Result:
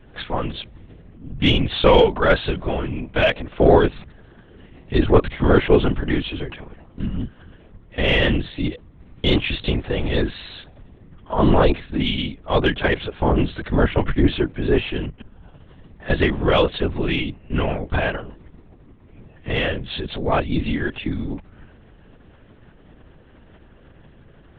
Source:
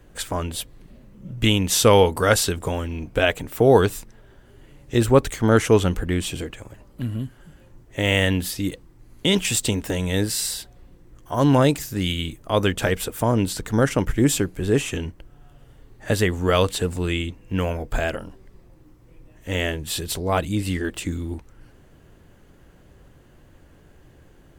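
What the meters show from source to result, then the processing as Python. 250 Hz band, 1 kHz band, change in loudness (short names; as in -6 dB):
+1.5 dB, +2.0 dB, +1.0 dB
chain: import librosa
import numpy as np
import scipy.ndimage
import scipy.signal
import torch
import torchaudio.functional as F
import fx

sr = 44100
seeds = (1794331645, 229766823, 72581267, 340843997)

p1 = fx.lpc_vocoder(x, sr, seeds[0], excitation='whisper', order=10)
p2 = 10.0 ** (-10.5 / 20.0) * np.tanh(p1 / 10.0 ** (-10.5 / 20.0))
p3 = p1 + (p2 * librosa.db_to_amplitude(-4.5))
y = p3 * librosa.db_to_amplitude(-1.5)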